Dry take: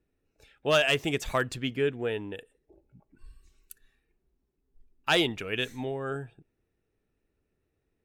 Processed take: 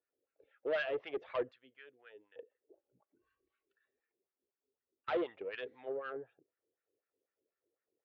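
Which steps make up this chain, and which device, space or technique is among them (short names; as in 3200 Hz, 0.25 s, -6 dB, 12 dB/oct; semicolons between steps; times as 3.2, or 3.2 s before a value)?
1.51–2.36 pre-emphasis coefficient 0.9; wah-wah guitar rig (wah 4 Hz 350–1500 Hz, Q 2.7; tube stage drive 29 dB, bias 0.35; speaker cabinet 77–4100 Hz, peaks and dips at 160 Hz -8 dB, 230 Hz -4 dB, 530 Hz +8 dB, 890 Hz -4 dB, 2000 Hz +4 dB, 3200 Hz +4 dB); gain -2 dB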